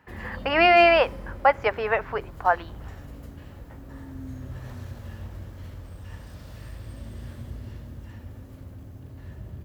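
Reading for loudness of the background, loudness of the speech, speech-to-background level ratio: -41.0 LUFS, -21.0 LUFS, 20.0 dB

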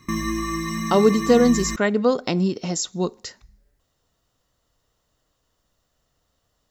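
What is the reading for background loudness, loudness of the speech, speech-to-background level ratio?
-27.5 LUFS, -20.5 LUFS, 7.0 dB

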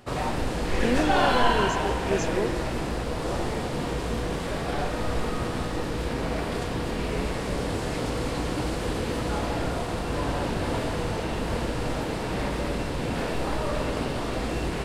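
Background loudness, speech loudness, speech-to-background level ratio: -28.5 LUFS, -29.5 LUFS, -1.0 dB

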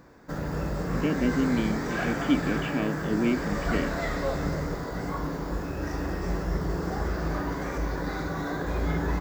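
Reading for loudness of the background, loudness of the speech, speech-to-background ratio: -31.0 LUFS, -29.5 LUFS, 1.5 dB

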